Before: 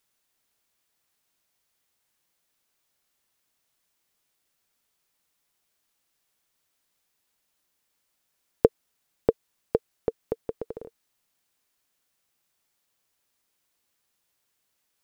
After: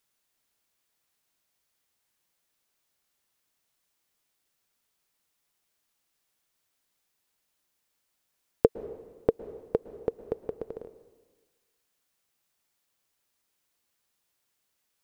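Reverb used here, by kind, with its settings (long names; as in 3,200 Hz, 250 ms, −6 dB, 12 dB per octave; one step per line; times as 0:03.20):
dense smooth reverb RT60 1.4 s, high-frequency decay 1×, pre-delay 100 ms, DRR 14 dB
level −2 dB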